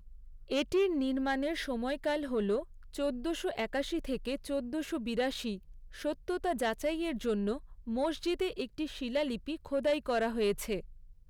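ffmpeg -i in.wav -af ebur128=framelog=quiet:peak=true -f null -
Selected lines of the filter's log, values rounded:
Integrated loudness:
  I:         -33.8 LUFS
  Threshold: -44.0 LUFS
Loudness range:
  LRA:         2.4 LU
  Threshold: -54.3 LUFS
  LRA low:   -35.4 LUFS
  LRA high:  -33.0 LUFS
True peak:
  Peak:      -22.1 dBFS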